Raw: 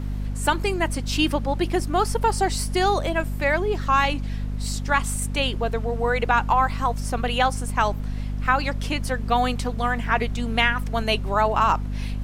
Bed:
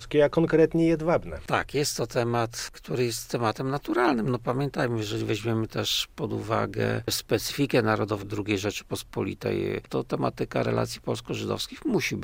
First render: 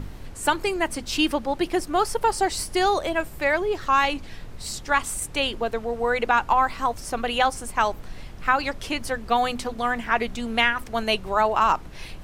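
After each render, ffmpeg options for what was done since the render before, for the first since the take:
-af "bandreject=f=50:t=h:w=6,bandreject=f=100:t=h:w=6,bandreject=f=150:t=h:w=6,bandreject=f=200:t=h:w=6,bandreject=f=250:t=h:w=6"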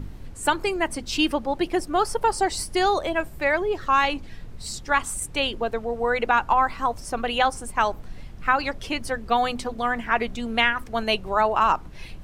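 -af "afftdn=nr=6:nf=-40"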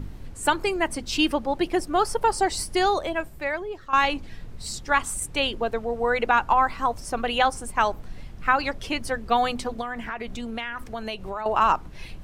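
-filter_complex "[0:a]asettb=1/sr,asplit=3[s0][s1][s2];[s0]atrim=end=9.814[s3];[s1]atrim=start=9.81:end=11.46,asetpts=PTS-STARTPTS,afade=t=in:d=0.004:c=qsin,afade=t=out:st=1.646:d=0.004:c=qsin,acompressor=threshold=0.0398:ratio=5:attack=3.2:release=140:knee=1:detection=peak[s4];[s2]atrim=start=11.456[s5];[s3][s4]acrossfade=d=0.004:c1=hsin:c2=qsin[s6];[s6][s5]acrossfade=d=0.004:c1=qsin:c2=hsin,asplit=2[s7][s8];[s7]atrim=end=3.93,asetpts=PTS-STARTPTS,afade=t=out:st=2.76:d=1.17:silence=0.223872[s9];[s8]atrim=start=3.93,asetpts=PTS-STARTPTS,afade=t=in:d=0.004:c=hsin:silence=0.223872[s10];[s9][s10]concat=n=2:v=0:a=1"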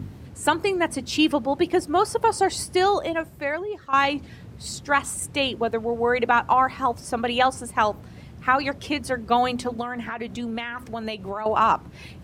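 -af "highpass=f=77:w=0.5412,highpass=f=77:w=1.3066,lowshelf=f=440:g=5"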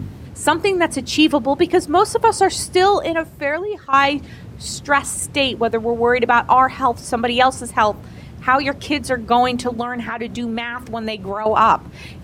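-af "volume=2,alimiter=limit=0.794:level=0:latency=1"

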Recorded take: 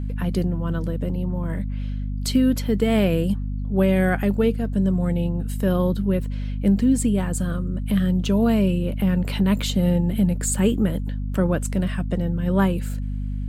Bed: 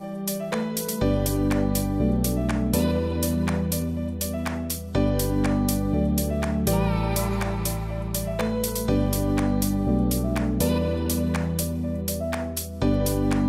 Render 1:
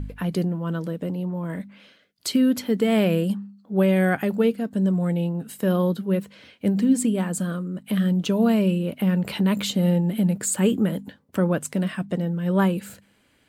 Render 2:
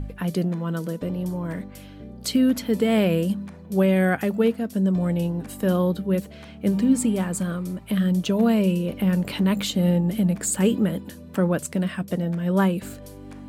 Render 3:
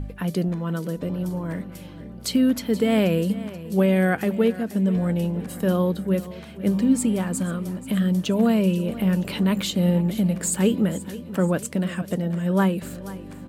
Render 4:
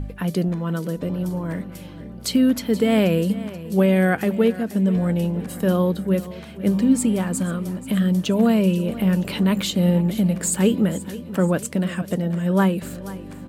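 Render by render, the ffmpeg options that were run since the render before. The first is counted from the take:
-af "bandreject=f=50:t=h:w=4,bandreject=f=100:t=h:w=4,bandreject=f=150:t=h:w=4,bandreject=f=200:t=h:w=4,bandreject=f=250:t=h:w=4"
-filter_complex "[1:a]volume=0.126[s0];[0:a][s0]amix=inputs=2:normalize=0"
-af "aecho=1:1:481|962|1443|1924|2405:0.15|0.0793|0.042|0.0223|0.0118"
-af "volume=1.26"

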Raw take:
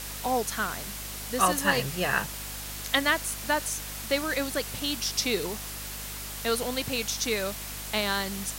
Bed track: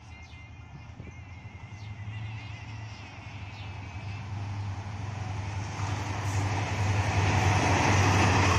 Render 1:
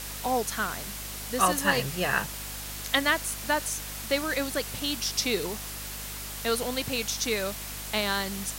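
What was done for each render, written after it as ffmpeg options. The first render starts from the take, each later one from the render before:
-af anull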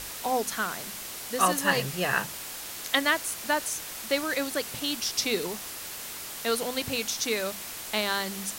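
-af "bandreject=f=50:t=h:w=6,bandreject=f=100:t=h:w=6,bandreject=f=150:t=h:w=6,bandreject=f=200:t=h:w=6,bandreject=f=250:t=h:w=6"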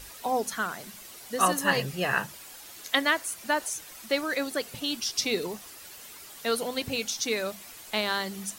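-af "afftdn=nr=10:nf=-39"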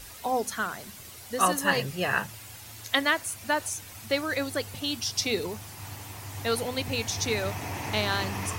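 -filter_complex "[1:a]volume=0.299[s0];[0:a][s0]amix=inputs=2:normalize=0"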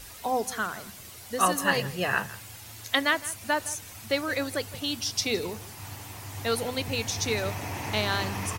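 -filter_complex "[0:a]asplit=2[s0][s1];[s1]adelay=163.3,volume=0.126,highshelf=f=4000:g=-3.67[s2];[s0][s2]amix=inputs=2:normalize=0"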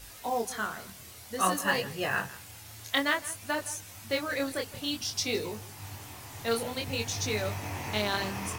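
-af "flanger=delay=19:depth=7:speed=0.54,acrusher=bits=5:mode=log:mix=0:aa=0.000001"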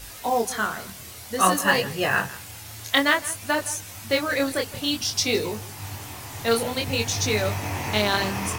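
-af "volume=2.37"

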